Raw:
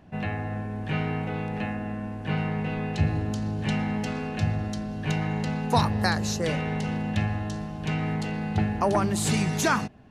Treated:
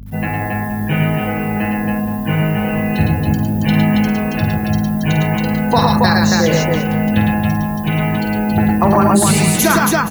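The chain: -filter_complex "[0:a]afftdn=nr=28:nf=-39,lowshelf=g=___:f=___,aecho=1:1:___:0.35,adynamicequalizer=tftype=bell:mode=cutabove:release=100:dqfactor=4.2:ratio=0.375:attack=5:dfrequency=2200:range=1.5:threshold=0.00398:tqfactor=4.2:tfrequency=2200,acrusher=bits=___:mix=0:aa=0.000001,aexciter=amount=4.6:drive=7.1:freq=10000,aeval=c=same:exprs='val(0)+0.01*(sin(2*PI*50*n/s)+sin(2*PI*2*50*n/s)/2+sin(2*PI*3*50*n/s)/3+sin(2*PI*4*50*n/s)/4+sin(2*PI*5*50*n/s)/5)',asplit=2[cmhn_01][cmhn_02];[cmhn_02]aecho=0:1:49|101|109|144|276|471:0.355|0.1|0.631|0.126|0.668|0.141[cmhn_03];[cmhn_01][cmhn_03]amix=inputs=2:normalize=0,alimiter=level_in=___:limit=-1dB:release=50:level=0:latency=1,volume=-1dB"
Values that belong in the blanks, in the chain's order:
-2.5, 120, 6, 9, 11dB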